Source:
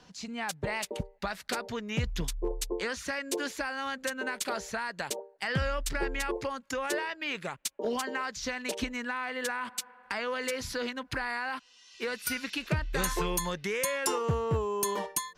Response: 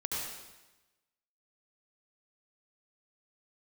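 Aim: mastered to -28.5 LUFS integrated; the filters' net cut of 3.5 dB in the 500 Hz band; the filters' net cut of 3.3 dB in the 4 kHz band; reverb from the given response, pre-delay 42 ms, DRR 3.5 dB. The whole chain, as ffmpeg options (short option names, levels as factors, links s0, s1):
-filter_complex "[0:a]equalizer=f=500:t=o:g=-4,equalizer=f=4000:t=o:g=-4.5,asplit=2[s0][s1];[1:a]atrim=start_sample=2205,adelay=42[s2];[s1][s2]afir=irnorm=-1:irlink=0,volume=0.422[s3];[s0][s3]amix=inputs=2:normalize=0,volume=1.68"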